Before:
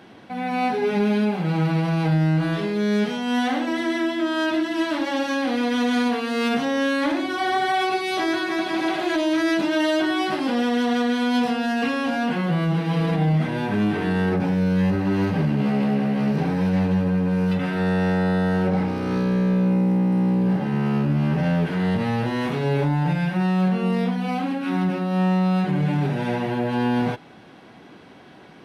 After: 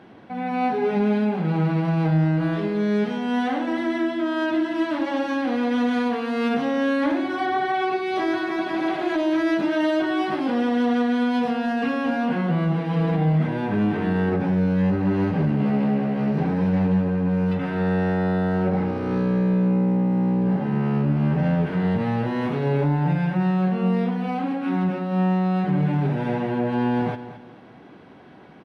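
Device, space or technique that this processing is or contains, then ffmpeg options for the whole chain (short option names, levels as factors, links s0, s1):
through cloth: -filter_complex "[0:a]highshelf=f=3300:g=-13.5,asettb=1/sr,asplit=3[s0][s1][s2];[s0]atrim=end=7.464[s3];[s1]atrim=start=7.46:end=8.16,asetpts=PTS-STARTPTS,afade=t=in:d=0.004:c=qsin,afade=t=out:st=0.696:d=0.004:c=qsin,highshelf=f=7900:g=-10.5[s4];[s2]atrim=start=8.156[s5];[s3][s4]acrossfade=d=0.004:c1=hsin:c2=qsin[s6];[s6][s5]acrossfade=d=0.004:c1=qsin:c2=hsin,aecho=1:1:219|438|657:0.211|0.0592|0.0166"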